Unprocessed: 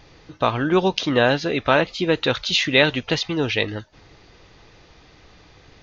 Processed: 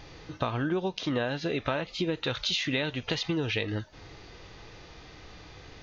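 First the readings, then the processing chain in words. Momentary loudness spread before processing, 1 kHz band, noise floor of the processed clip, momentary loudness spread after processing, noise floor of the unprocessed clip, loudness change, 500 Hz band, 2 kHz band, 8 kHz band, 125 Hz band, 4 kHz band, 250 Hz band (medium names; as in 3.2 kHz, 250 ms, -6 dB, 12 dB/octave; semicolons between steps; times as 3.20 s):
7 LU, -12.5 dB, -50 dBFS, 20 LU, -51 dBFS, -10.0 dB, -11.5 dB, -12.0 dB, no reading, -6.0 dB, -9.0 dB, -8.0 dB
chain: harmonic-percussive split harmonic +7 dB; compression 12:1, threshold -23 dBFS, peak gain reduction 16.5 dB; trim -3 dB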